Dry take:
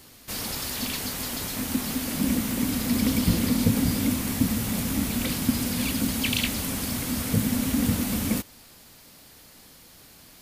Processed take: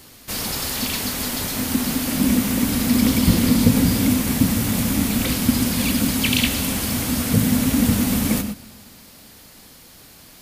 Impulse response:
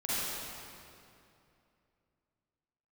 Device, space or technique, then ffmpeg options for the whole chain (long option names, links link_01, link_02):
keyed gated reverb: -filter_complex "[0:a]asplit=3[link_01][link_02][link_03];[1:a]atrim=start_sample=2205[link_04];[link_02][link_04]afir=irnorm=-1:irlink=0[link_05];[link_03]apad=whole_len=459327[link_06];[link_05][link_06]sidechaingate=range=-12dB:threshold=-41dB:ratio=16:detection=peak,volume=-14.5dB[link_07];[link_01][link_07]amix=inputs=2:normalize=0,volume=4.5dB"